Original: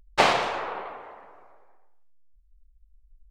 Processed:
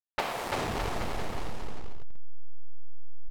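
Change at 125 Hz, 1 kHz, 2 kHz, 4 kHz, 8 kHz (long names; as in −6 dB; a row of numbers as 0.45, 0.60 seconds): +7.0, −7.5, −8.0, −8.0, −3.0 decibels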